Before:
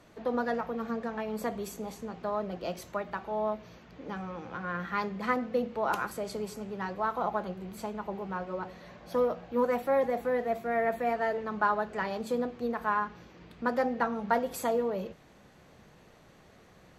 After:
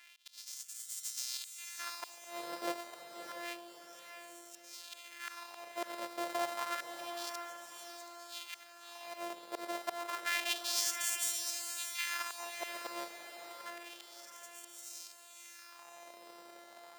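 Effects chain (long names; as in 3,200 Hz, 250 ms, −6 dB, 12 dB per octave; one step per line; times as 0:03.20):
samples sorted by size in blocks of 128 samples
high-pass filter 86 Hz 24 dB per octave
volume swells 763 ms
auto-filter high-pass sine 0.29 Hz 500–7,600 Hz
on a send: feedback delay with all-pass diffusion 616 ms, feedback 43%, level −6.5 dB
on the sum: level +2 dB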